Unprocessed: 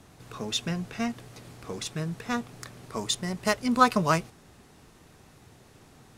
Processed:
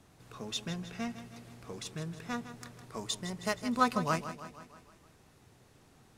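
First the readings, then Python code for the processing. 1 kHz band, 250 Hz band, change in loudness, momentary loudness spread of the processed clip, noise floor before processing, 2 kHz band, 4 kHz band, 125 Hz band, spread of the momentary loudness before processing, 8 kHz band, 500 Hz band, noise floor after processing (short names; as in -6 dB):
-7.0 dB, -7.0 dB, -7.5 dB, 20 LU, -55 dBFS, -7.0 dB, -7.0 dB, -7.0 dB, 21 LU, -7.0 dB, -7.0 dB, -62 dBFS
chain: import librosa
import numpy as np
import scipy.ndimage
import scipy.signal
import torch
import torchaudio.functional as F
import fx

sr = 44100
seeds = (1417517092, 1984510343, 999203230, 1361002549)

y = fx.echo_feedback(x, sr, ms=158, feedback_pct=57, wet_db=-12)
y = F.gain(torch.from_numpy(y), -7.5).numpy()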